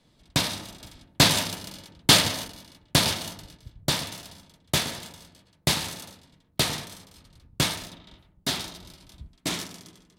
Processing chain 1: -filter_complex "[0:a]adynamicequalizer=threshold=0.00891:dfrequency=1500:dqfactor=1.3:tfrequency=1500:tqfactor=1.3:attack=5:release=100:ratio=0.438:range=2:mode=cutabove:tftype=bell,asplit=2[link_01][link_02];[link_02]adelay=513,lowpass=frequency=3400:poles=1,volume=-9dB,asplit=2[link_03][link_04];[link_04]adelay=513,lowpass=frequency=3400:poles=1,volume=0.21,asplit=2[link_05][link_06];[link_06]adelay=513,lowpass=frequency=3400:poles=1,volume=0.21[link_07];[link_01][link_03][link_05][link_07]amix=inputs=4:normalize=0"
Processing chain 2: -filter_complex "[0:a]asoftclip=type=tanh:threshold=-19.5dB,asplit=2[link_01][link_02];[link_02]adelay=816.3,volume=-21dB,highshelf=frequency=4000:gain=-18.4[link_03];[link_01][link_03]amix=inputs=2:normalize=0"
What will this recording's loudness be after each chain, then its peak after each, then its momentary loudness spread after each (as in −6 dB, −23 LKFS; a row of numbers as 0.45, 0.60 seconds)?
−25.5, −29.5 LKFS; −3.0, −19.0 dBFS; 19, 22 LU